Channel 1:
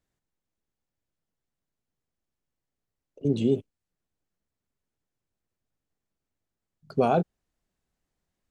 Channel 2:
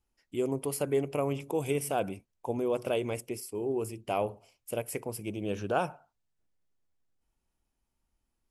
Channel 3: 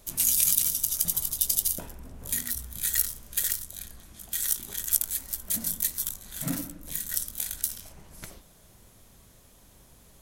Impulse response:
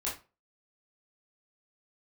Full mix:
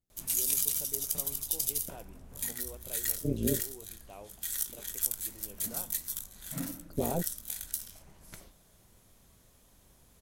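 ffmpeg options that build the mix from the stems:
-filter_complex "[0:a]equalizer=f=1500:w=0.37:g=-14,tremolo=f=170:d=0.889,volume=1.06[s0];[1:a]volume=0.112[s1];[2:a]adelay=100,volume=0.447,asplit=2[s2][s3];[s3]volume=0.126[s4];[3:a]atrim=start_sample=2205[s5];[s4][s5]afir=irnorm=-1:irlink=0[s6];[s0][s1][s2][s6]amix=inputs=4:normalize=0"

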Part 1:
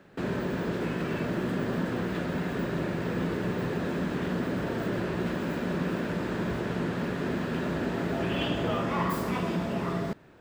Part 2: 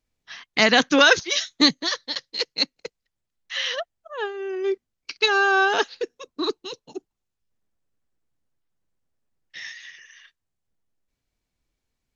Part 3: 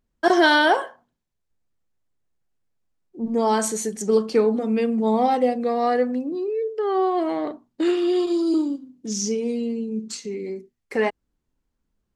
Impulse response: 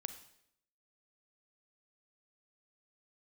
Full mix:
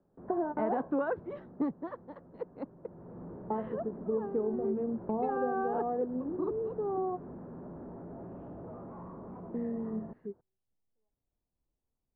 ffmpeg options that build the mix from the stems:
-filter_complex "[0:a]asoftclip=type=hard:threshold=0.0335,volume=0.531,afade=t=out:st=1.18:d=0.6:silence=0.473151,afade=t=in:st=2.82:d=0.44:silence=0.298538[s0];[1:a]volume=0.501,asplit=2[s1][s2];[2:a]deesser=0.8,volume=0.376[s3];[s2]apad=whole_len=536177[s4];[s3][s4]sidechaingate=range=0.00126:threshold=0.00112:ratio=16:detection=peak[s5];[s0][s1][s5]amix=inputs=3:normalize=0,lowpass=f=1000:w=0.5412,lowpass=f=1000:w=1.3066,acompressor=threshold=0.0316:ratio=2.5"

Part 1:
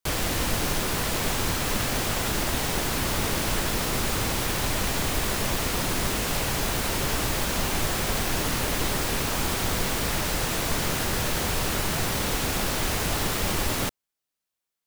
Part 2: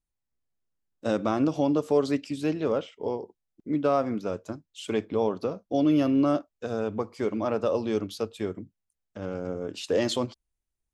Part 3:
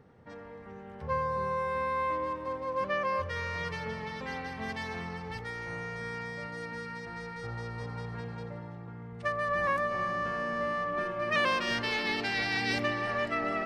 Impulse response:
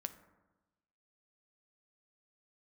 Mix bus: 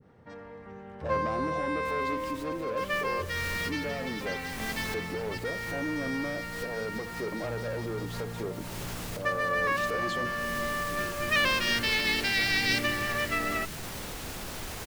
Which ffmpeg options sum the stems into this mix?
-filter_complex "[0:a]adelay=1800,volume=0.335,asplit=2[s0][s1];[s1]volume=0.168[s2];[1:a]equalizer=f=640:t=o:w=2.8:g=14.5,alimiter=limit=0.447:level=0:latency=1,volume=0.376,asplit=3[s3][s4][s5];[s3]atrim=end=4.37,asetpts=PTS-STARTPTS,afade=t=out:st=4.366:d=0.004:c=hsin[s6];[s4]atrim=start=4.37:end=4.94,asetpts=PTS-STARTPTS,volume=0[s7];[s5]atrim=start=4.94,asetpts=PTS-STARTPTS,afade=t=in:d=0.004:c=hsin[s8];[s6][s7][s8]concat=n=3:v=0:a=1,asplit=2[s9][s10];[2:a]adynamicequalizer=threshold=0.00631:dfrequency=1600:dqfactor=0.7:tfrequency=1600:tqfactor=0.7:attack=5:release=100:ratio=0.375:range=3:mode=boostabove:tftype=highshelf,volume=1.12[s11];[s10]apad=whole_len=734718[s12];[s0][s12]sidechaincompress=threshold=0.00631:ratio=3:attack=16:release=226[s13];[s13][s9]amix=inputs=2:normalize=0,asoftclip=type=tanh:threshold=0.0562,alimiter=level_in=2:limit=0.0631:level=0:latency=1,volume=0.501,volume=1[s14];[s2]aecho=0:1:921:1[s15];[s11][s14][s15]amix=inputs=3:normalize=0,adynamicequalizer=threshold=0.01:dfrequency=830:dqfactor=0.99:tfrequency=830:tqfactor=0.99:attack=5:release=100:ratio=0.375:range=2.5:mode=cutabove:tftype=bell"

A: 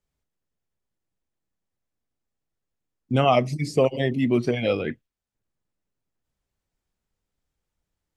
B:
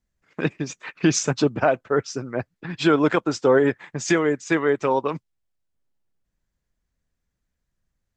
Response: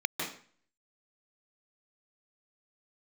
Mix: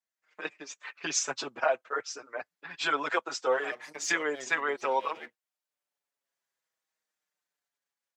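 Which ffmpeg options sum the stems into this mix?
-filter_complex "[0:a]aeval=exprs='if(lt(val(0),0),0.251*val(0),val(0))':c=same,adelay=350,volume=0.944[s0];[1:a]dynaudnorm=f=260:g=7:m=2,volume=0.596,asplit=2[s1][s2];[s2]apad=whole_len=375709[s3];[s0][s3]sidechaincompress=threshold=0.0282:ratio=10:attack=23:release=204[s4];[s4][s1]amix=inputs=2:normalize=0,highpass=690,asplit=2[s5][s6];[s6]adelay=5.8,afreqshift=-0.59[s7];[s5][s7]amix=inputs=2:normalize=1"

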